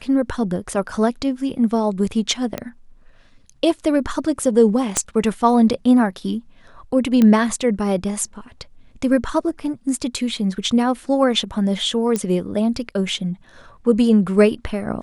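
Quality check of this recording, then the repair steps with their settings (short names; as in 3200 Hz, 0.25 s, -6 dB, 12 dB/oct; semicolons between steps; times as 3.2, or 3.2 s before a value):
2.58 pop -11 dBFS
4.97 pop -5 dBFS
7.22 pop -6 dBFS
12.16 pop -9 dBFS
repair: de-click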